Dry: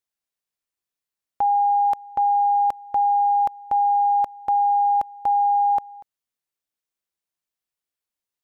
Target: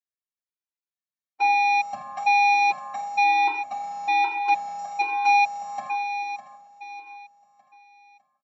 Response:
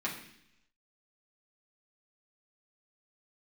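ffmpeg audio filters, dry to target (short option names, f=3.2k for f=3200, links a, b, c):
-filter_complex "[0:a]aemphasis=mode=production:type=cd,afwtdn=0.0316,asettb=1/sr,asplit=3[a][b][c];[a]atrim=end=3.234[d];[b]atrim=start=3.23:end=4.79,asetpts=PTS-STARTPTS,afade=t=in:d=0.004:c=qsin,afade=t=out:st=1.556:d=0.004:c=qsin,aecho=1:1:3.1:0.36,atrim=end_sample=68796[e];[c]atrim=start=4.786[f];[d][e]acrossfade=d=0.004:c1=hsin:c2=qsin[g];[g][f]acrossfade=d=0.004:c1=qsin:c2=hsin,acrossover=split=390[h][i];[i]dynaudnorm=f=440:g=7:m=9.5dB[j];[h][j]amix=inputs=2:normalize=0,asoftclip=type=tanh:threshold=-21dB,aecho=1:1:604|1208|1812|2416:0.266|0.114|0.0492|0.0212[k];[1:a]atrim=start_sample=2205,asetrate=43218,aresample=44100[l];[k][l]afir=irnorm=-1:irlink=0,aresample=16000,aresample=44100,afftfilt=real='re*gt(sin(2*PI*1.1*pts/sr)*(1-2*mod(floor(b*sr/1024/260),2)),0)':imag='im*gt(sin(2*PI*1.1*pts/sr)*(1-2*mod(floor(b*sr/1024/260),2)),0)':win_size=1024:overlap=0.75"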